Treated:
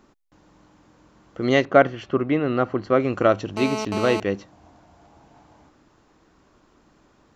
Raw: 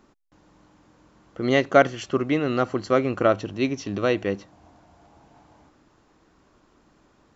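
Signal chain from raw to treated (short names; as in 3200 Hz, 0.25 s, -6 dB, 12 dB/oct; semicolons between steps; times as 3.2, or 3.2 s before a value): 1.65–3 Bessel low-pass 2300 Hz, order 2; 3.57–4.2 GSM buzz -29 dBFS; gain +1.5 dB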